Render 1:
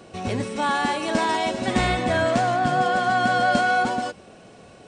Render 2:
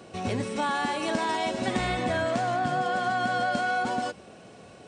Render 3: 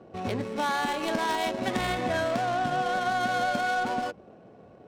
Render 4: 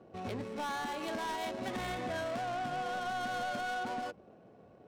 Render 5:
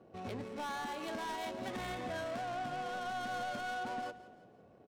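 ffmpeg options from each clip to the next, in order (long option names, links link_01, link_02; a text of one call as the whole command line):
ffmpeg -i in.wav -af "highpass=59,acompressor=threshold=-22dB:ratio=6,volume=-1.5dB" out.wav
ffmpeg -i in.wav -af "bass=frequency=250:gain=-3,treble=frequency=4000:gain=12,adynamicsmooth=sensitivity=3.5:basefreq=800" out.wav
ffmpeg -i in.wav -af "asoftclip=type=tanh:threshold=-24.5dB,volume=-6.5dB" out.wav
ffmpeg -i in.wav -af "aecho=1:1:170|340|510|680:0.141|0.0636|0.0286|0.0129,volume=-3dB" out.wav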